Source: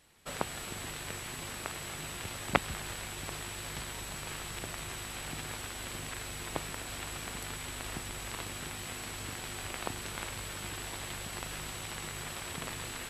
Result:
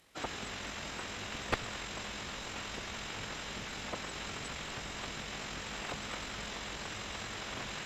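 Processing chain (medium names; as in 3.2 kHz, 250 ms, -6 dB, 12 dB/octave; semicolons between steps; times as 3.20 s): bass shelf 72 Hz -10.5 dB; formant-preserving pitch shift -9.5 st; one-sided clip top -34 dBFS; granular stretch 0.6×, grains 45 ms; trim +2.5 dB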